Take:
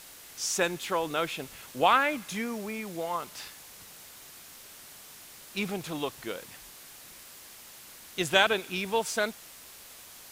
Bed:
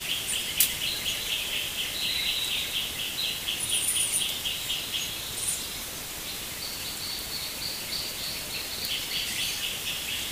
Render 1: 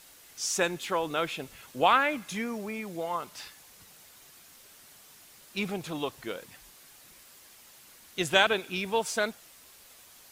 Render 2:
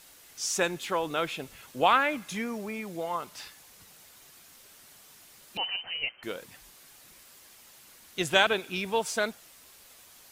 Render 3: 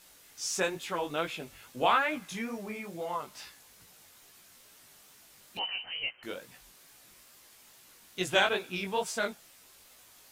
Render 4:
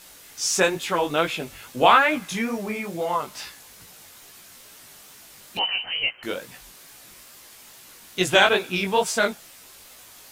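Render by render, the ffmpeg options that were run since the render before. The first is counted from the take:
-af "afftdn=nr=6:nf=-49"
-filter_complex "[0:a]asettb=1/sr,asplit=3[a][b][c];[a]atrim=end=5.574[d];[b]atrim=start=5.57:end=6.23,asetpts=PTS-STARTPTS,afade=t=in:d=0.004:c=qsin,afade=t=out:st=0.656:d=0.004:c=qsin,lowpass=f=2.7k:t=q:w=0.5098,lowpass=f=2.7k:t=q:w=0.6013,lowpass=f=2.7k:t=q:w=0.9,lowpass=f=2.7k:t=q:w=2.563,afreqshift=-3200[e];[c]atrim=start=6.226[f];[d][e]acrossfade=d=0.004:c1=hsin:c2=qsin[g];[g][f]acrossfade=d=0.004:c1=qsin:c2=hsin"
-af "flanger=delay=16:depth=5.5:speed=2.3"
-af "volume=10dB,alimiter=limit=-3dB:level=0:latency=1"

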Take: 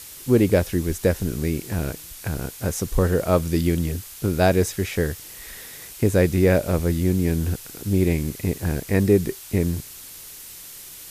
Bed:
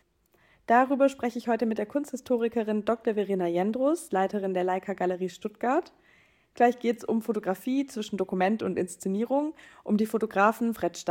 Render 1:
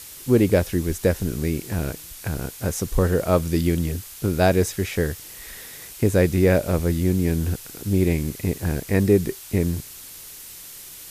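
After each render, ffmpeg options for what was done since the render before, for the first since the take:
-af anull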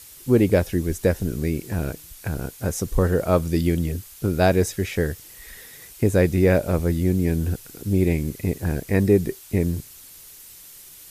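-af "afftdn=nr=6:nf=-41"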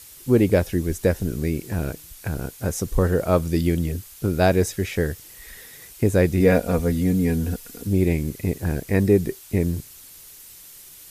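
-filter_complex "[0:a]asettb=1/sr,asplit=3[a][b][c];[a]atrim=end=6.404[d];[b]atrim=start=6.4:end=7.87,asetpts=PTS-STARTPTS,afade=t=in:d=0.004:c=qsin,afade=t=out:st=1.466:d=0.004:c=qsin,aecho=1:1:4.2:0.65,atrim=end_sample=64827[e];[c]atrim=start=7.866[f];[d][e]acrossfade=d=0.004:c1=hsin:c2=qsin[g];[g][f]acrossfade=d=0.004:c1=qsin:c2=hsin"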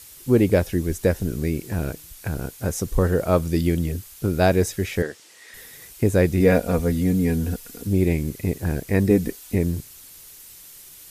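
-filter_complex "[0:a]asettb=1/sr,asplit=3[a][b][c];[a]atrim=end=5.024[d];[b]atrim=start=5.02:end=5.54,asetpts=PTS-STARTPTS,afade=t=in:d=0.004:c=qsin,afade=t=out:st=0.516:d=0.004:c=qsin,highpass=330,lowpass=7.1k[e];[c]atrim=start=5.536[f];[d][e]acrossfade=d=0.004:c1=hsin:c2=qsin[g];[g][f]acrossfade=d=0.004:c1=qsin:c2=hsin,asettb=1/sr,asplit=3[h][i][j];[h]atrim=end=9.104[k];[i]atrim=start=9.1:end=9.55,asetpts=PTS-STARTPTS,afade=t=in:d=0.004:c=qsin,afade=t=out:st=0.446:d=0.004:c=qsin,aecho=1:1:4:0.65,atrim=end_sample=19845[l];[j]atrim=start=9.546[m];[k][l]acrossfade=d=0.004:c1=hsin:c2=qsin[n];[n][m]acrossfade=d=0.004:c1=qsin:c2=hsin"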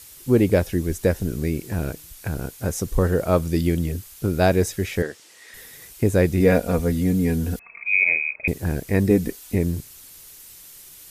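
-filter_complex "[0:a]asettb=1/sr,asplit=3[a][b][c];[a]atrim=end=7.594[d];[b]atrim=start=7.59:end=8.48,asetpts=PTS-STARTPTS,afade=t=in:d=0.004:c=qsin,afade=t=out:st=0.886:d=0.004:c=qsin,lowpass=f=2.2k:t=q:w=0.5098,lowpass=f=2.2k:t=q:w=0.6013,lowpass=f=2.2k:t=q:w=0.9,lowpass=f=2.2k:t=q:w=2.563,afreqshift=-2600[e];[c]atrim=start=8.476[f];[d][e]acrossfade=d=0.004:c1=hsin:c2=qsin[g];[g][f]acrossfade=d=0.004:c1=qsin:c2=hsin"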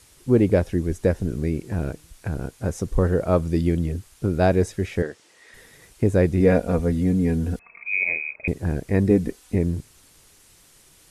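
-af "lowpass=f=11k:w=0.5412,lowpass=f=11k:w=1.3066,highshelf=f=2.1k:g=-8.5"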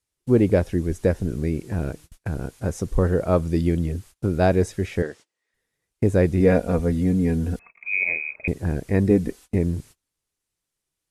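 -af "agate=range=-29dB:threshold=-42dB:ratio=16:detection=peak"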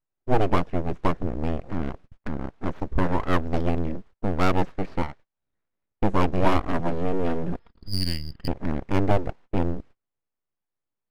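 -af "aeval=exprs='abs(val(0))':c=same,adynamicsmooth=sensitivity=5.5:basefreq=1.6k"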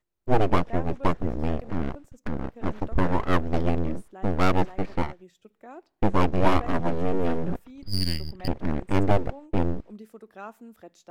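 -filter_complex "[1:a]volume=-18.5dB[a];[0:a][a]amix=inputs=2:normalize=0"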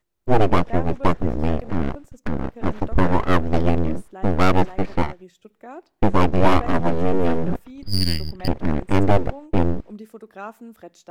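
-af "volume=5.5dB,alimiter=limit=-3dB:level=0:latency=1"

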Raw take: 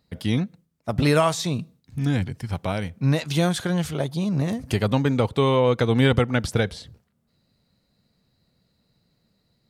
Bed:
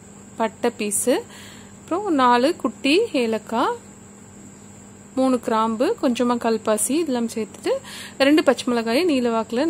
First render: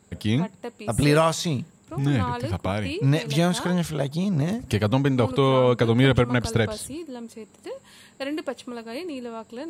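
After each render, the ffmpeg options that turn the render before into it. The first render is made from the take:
-filter_complex "[1:a]volume=-14dB[a];[0:a][a]amix=inputs=2:normalize=0"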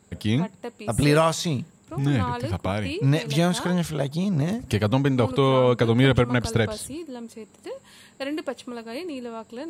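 -af anull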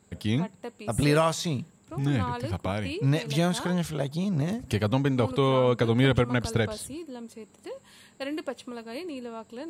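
-af "volume=-3.5dB"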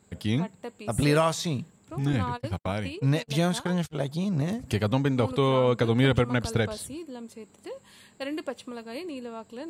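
-filter_complex "[0:a]asettb=1/sr,asplit=3[a][b][c];[a]atrim=end=2.134[d];[b]atrim=start=2.13:end=3.95,asetpts=PTS-STARTPTS,afade=t=in:d=0.004:c=qsin,afade=t=out:st=1.816:d=0.004:c=qsin,agate=range=-46dB:threshold=-33dB:ratio=16:release=100:detection=peak[e];[c]atrim=start=3.946[f];[d][e]acrossfade=d=0.004:c1=hsin:c2=qsin[g];[g][f]acrossfade=d=0.004:c1=qsin:c2=hsin"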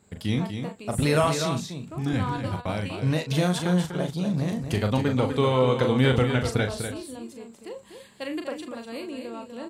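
-filter_complex "[0:a]asplit=2[a][b];[b]adelay=39,volume=-7dB[c];[a][c]amix=inputs=2:normalize=0,asplit=2[d][e];[e]aecho=0:1:246:0.422[f];[d][f]amix=inputs=2:normalize=0"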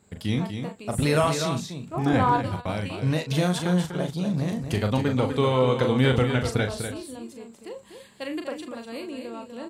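-filter_complex "[0:a]asplit=3[a][b][c];[a]afade=t=out:st=1.93:d=0.02[d];[b]equalizer=f=750:w=0.59:g=12.5,afade=t=in:st=1.93:d=0.02,afade=t=out:st=2.41:d=0.02[e];[c]afade=t=in:st=2.41:d=0.02[f];[d][e][f]amix=inputs=3:normalize=0"

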